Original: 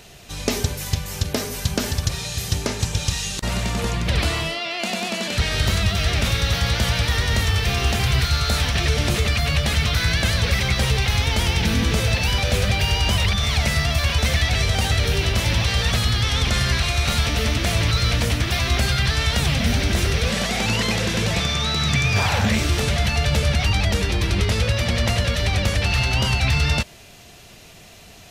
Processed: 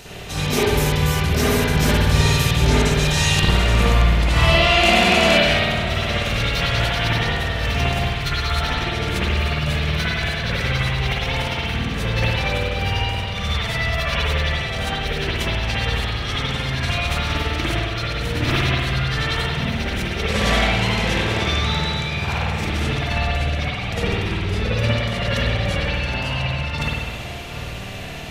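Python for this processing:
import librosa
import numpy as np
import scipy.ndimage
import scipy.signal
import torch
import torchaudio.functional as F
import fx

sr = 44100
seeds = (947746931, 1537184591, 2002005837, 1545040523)

y = fx.over_compress(x, sr, threshold_db=-25.0, ratio=-0.5)
y = fx.echo_alternate(y, sr, ms=754, hz=1900.0, feedback_pct=74, wet_db=-12)
y = fx.rev_spring(y, sr, rt60_s=1.4, pass_ms=(53,), chirp_ms=45, drr_db=-8.5)
y = y * librosa.db_to_amplitude(-2.5)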